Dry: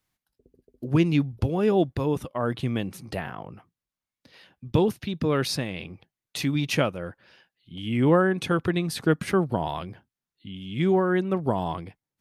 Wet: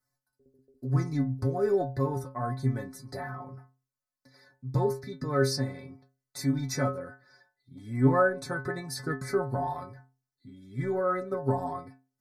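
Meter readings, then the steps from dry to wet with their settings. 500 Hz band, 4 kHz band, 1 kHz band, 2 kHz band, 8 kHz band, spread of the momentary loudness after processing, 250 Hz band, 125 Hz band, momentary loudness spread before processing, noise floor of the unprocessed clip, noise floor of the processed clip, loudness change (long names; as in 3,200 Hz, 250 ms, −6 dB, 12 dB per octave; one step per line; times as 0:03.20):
−4.0 dB, −8.0 dB, −2.5 dB, −4.0 dB, −1.5 dB, 15 LU, −7.0 dB, −2.5 dB, 16 LU, below −85 dBFS, below −85 dBFS, −4.5 dB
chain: in parallel at −9.5 dB: soft clipping −17 dBFS, distortion −15 dB
on the sum: Chebyshev band-stop filter 1,800–4,600 Hz, order 2
stiff-string resonator 130 Hz, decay 0.38 s, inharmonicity 0.008
level +7 dB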